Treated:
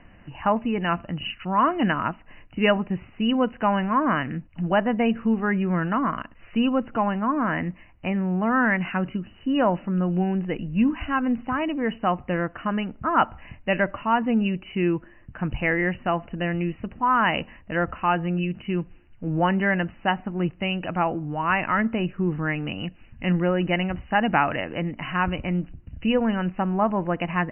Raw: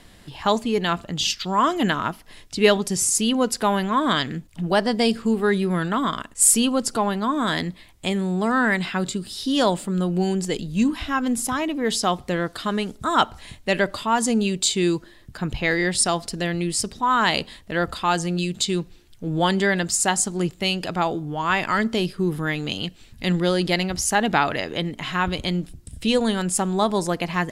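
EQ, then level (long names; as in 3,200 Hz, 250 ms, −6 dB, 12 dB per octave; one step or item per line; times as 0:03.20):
linear-phase brick-wall low-pass 3,000 Hz
high-frequency loss of the air 130 metres
parametric band 410 Hz −10 dB 0.22 octaves
0.0 dB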